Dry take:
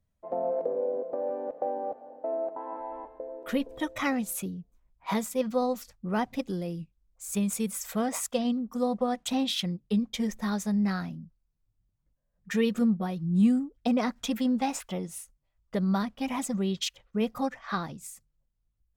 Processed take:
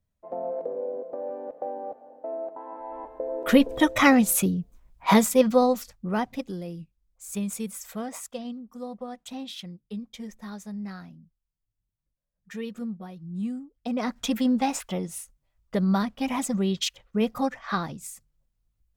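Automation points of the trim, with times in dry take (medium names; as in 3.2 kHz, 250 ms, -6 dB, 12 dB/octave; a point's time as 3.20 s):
2.77 s -2 dB
3.41 s +11 dB
5.24 s +11 dB
6.54 s -2 dB
7.56 s -2 dB
8.64 s -9 dB
13.74 s -9 dB
14.17 s +3.5 dB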